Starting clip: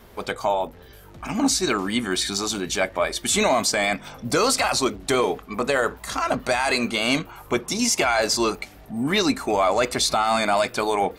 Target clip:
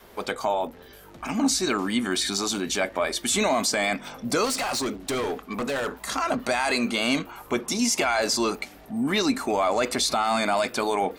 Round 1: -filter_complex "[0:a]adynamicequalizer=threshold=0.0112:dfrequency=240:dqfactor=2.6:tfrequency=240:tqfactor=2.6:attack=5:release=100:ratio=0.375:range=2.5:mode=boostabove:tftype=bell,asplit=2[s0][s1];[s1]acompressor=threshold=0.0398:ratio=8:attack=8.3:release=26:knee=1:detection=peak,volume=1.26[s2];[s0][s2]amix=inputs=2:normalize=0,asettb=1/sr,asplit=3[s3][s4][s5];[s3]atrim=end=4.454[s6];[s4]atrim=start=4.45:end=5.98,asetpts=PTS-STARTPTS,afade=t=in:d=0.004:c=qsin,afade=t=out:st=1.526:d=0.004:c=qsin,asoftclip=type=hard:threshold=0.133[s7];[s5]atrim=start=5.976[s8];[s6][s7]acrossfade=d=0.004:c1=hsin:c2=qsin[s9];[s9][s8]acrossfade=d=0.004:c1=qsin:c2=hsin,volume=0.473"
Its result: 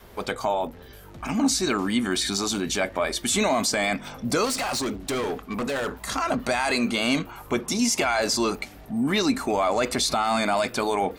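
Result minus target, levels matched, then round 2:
125 Hz band +3.0 dB
-filter_complex "[0:a]adynamicequalizer=threshold=0.0112:dfrequency=240:dqfactor=2.6:tfrequency=240:tqfactor=2.6:attack=5:release=100:ratio=0.375:range=2.5:mode=boostabove:tftype=bell,asplit=2[s0][s1];[s1]acompressor=threshold=0.0398:ratio=8:attack=8.3:release=26:knee=1:detection=peak,highpass=170,volume=1.26[s2];[s0][s2]amix=inputs=2:normalize=0,asettb=1/sr,asplit=3[s3][s4][s5];[s3]atrim=end=4.454[s6];[s4]atrim=start=4.45:end=5.98,asetpts=PTS-STARTPTS,afade=t=in:d=0.004:c=qsin,afade=t=out:st=1.526:d=0.004:c=qsin,asoftclip=type=hard:threshold=0.133[s7];[s5]atrim=start=5.976[s8];[s6][s7]acrossfade=d=0.004:c1=hsin:c2=qsin[s9];[s9][s8]acrossfade=d=0.004:c1=qsin:c2=hsin,volume=0.473"

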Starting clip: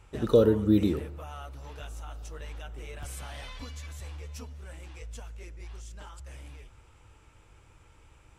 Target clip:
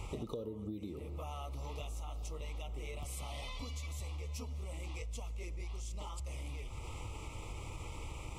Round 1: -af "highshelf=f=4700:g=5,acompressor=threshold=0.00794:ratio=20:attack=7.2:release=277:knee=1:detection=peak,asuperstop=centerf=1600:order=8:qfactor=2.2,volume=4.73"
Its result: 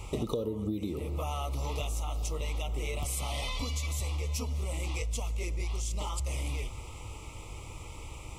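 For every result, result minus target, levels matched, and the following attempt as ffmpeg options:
compression: peak gain reduction -9 dB; 8 kHz band +2.5 dB
-af "highshelf=f=4700:g=5,acompressor=threshold=0.00266:ratio=20:attack=7.2:release=277:knee=1:detection=peak,asuperstop=centerf=1600:order=8:qfactor=2.2,volume=4.73"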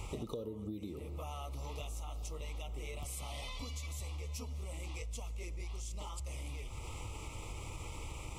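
8 kHz band +2.5 dB
-af "acompressor=threshold=0.00266:ratio=20:attack=7.2:release=277:knee=1:detection=peak,asuperstop=centerf=1600:order=8:qfactor=2.2,volume=4.73"

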